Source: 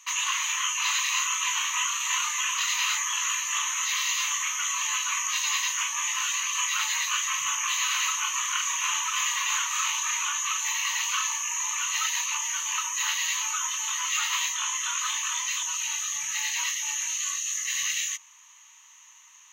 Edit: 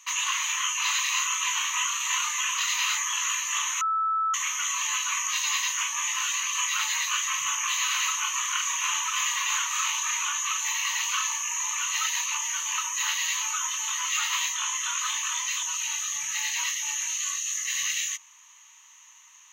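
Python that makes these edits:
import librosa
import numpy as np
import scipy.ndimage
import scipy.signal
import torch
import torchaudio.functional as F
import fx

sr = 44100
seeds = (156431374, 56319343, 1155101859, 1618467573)

y = fx.edit(x, sr, fx.bleep(start_s=3.81, length_s=0.53, hz=1310.0, db=-22.5), tone=tone)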